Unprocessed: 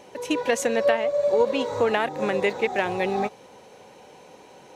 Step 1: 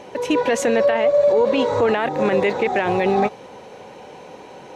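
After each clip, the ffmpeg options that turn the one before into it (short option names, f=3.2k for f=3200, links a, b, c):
-af "highshelf=f=5.7k:g=-11.5,alimiter=limit=-18.5dB:level=0:latency=1:release=11,volume=9dB"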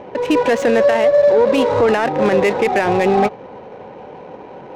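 -filter_complex "[0:a]asplit=2[a][b];[b]asoftclip=type=tanh:threshold=-22dB,volume=-8dB[c];[a][c]amix=inputs=2:normalize=0,adynamicsmooth=sensitivity=2.5:basefreq=1.3k,volume=2.5dB"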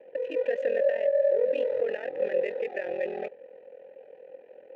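-filter_complex "[0:a]aeval=exprs='val(0)*sin(2*PI*21*n/s)':c=same,asplit=3[a][b][c];[a]bandpass=f=530:t=q:w=8,volume=0dB[d];[b]bandpass=f=1.84k:t=q:w=8,volume=-6dB[e];[c]bandpass=f=2.48k:t=q:w=8,volume=-9dB[f];[d][e][f]amix=inputs=3:normalize=0,volume=-4dB"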